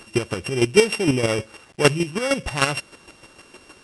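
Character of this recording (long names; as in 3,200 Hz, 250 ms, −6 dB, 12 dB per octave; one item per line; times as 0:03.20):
a buzz of ramps at a fixed pitch in blocks of 16 samples
chopped level 6.5 Hz, depth 60%, duty 20%
a quantiser's noise floor 10 bits, dither none
MP3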